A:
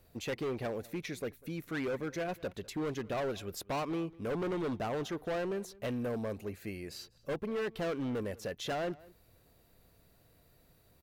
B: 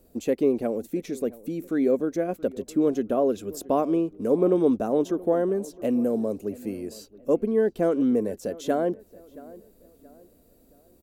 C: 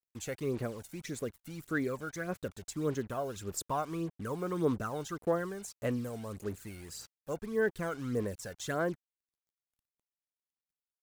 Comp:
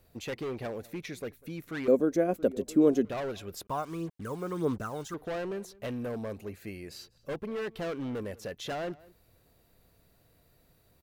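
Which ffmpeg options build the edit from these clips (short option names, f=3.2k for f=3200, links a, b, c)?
-filter_complex "[0:a]asplit=3[a][b][c];[a]atrim=end=1.882[d];[1:a]atrim=start=1.878:end=3.052[e];[b]atrim=start=3.048:end=3.672[f];[2:a]atrim=start=3.668:end=5.142[g];[c]atrim=start=5.138[h];[d][e]acrossfade=d=0.004:c1=hsin:c2=hsin[i];[i][f]acrossfade=d=0.004:c1=hsin:c2=hsin[j];[j][g]acrossfade=d=0.004:c1=hsin:c2=hsin[k];[k][h]acrossfade=d=0.004:c1=hsin:c2=hsin"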